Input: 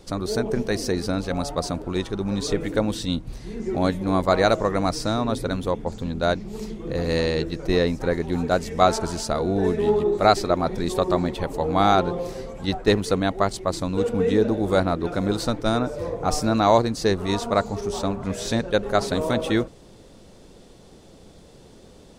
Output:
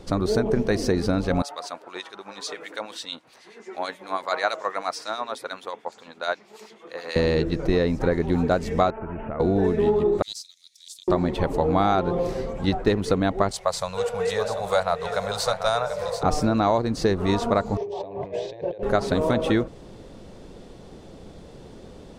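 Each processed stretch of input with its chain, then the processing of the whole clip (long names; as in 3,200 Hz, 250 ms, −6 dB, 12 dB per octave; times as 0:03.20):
0:01.42–0:07.16: high-pass filter 890 Hz + two-band tremolo in antiphase 9.2 Hz, crossover 2,100 Hz
0:08.90–0:09.40: Butterworth low-pass 2,800 Hz 96 dB per octave + downward compressor 5 to 1, threshold −33 dBFS
0:10.22–0:11.08: inverse Chebyshev high-pass filter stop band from 1,100 Hz, stop band 70 dB + highs frequency-modulated by the lows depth 0.15 ms
0:13.51–0:16.23: Chebyshev band-stop filter 150–570 Hz + bass and treble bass −14 dB, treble +8 dB + single-tap delay 739 ms −9.5 dB
0:17.77–0:18.83: compressor whose output falls as the input rises −33 dBFS + band-pass filter 170–2,500 Hz + phaser with its sweep stopped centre 560 Hz, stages 4
whole clip: high-shelf EQ 4,200 Hz −10 dB; downward compressor, threshold −22 dBFS; level +5 dB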